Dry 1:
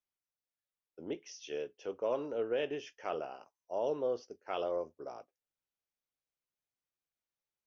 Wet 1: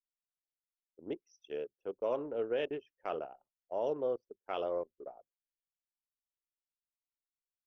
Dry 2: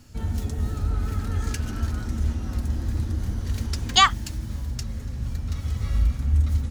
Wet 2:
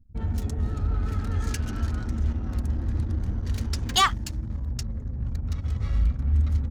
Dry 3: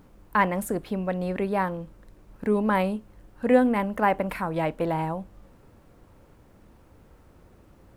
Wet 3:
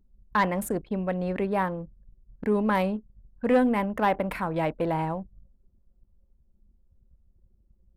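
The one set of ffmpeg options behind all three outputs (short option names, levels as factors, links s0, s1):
-af "anlmdn=0.398,asoftclip=type=tanh:threshold=0.211"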